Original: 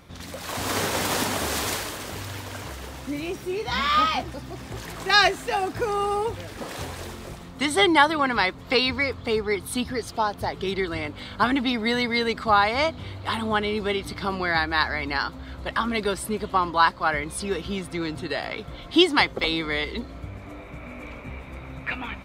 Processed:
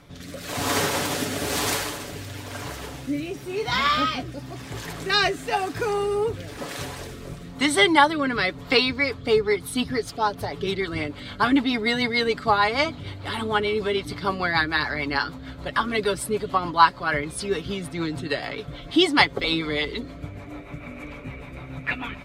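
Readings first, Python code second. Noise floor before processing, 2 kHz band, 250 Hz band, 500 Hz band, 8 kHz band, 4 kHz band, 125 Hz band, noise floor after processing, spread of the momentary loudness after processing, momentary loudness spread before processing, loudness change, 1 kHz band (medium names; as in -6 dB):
-41 dBFS, +0.5 dB, +1.0 dB, +1.5 dB, +1.0 dB, +0.5 dB, +1.5 dB, -40 dBFS, 17 LU, 17 LU, +0.5 dB, 0.0 dB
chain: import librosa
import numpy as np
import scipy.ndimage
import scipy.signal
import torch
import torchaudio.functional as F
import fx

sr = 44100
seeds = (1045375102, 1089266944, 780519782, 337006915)

y = fx.rotary_switch(x, sr, hz=1.0, then_hz=6.7, switch_at_s=8.62)
y = y + 0.45 * np.pad(y, (int(7.0 * sr / 1000.0), 0))[:len(y)]
y = F.gain(torch.from_numpy(y), 2.5).numpy()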